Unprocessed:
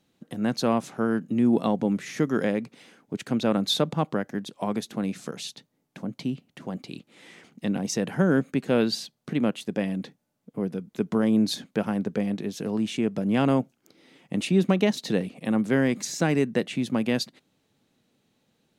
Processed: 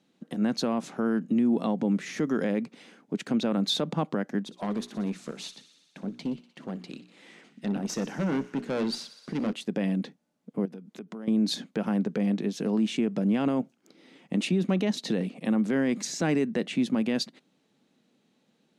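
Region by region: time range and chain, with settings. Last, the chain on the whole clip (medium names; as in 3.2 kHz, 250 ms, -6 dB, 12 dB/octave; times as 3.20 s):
4.43–9.53 s: hum notches 60/120/180/240/300/360/420 Hz + valve stage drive 25 dB, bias 0.6 + feedback echo behind a high-pass 61 ms, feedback 77%, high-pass 1.5 kHz, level -15.5 dB
10.65–11.28 s: high-pass 140 Hz + compression 4:1, threshold -41 dBFS
whole clip: Bessel low-pass 8.1 kHz, order 2; resonant low shelf 130 Hz -12.5 dB, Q 1.5; peak limiter -17.5 dBFS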